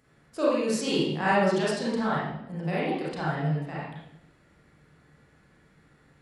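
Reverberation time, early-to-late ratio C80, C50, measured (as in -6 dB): 0.80 s, 4.0 dB, -1.5 dB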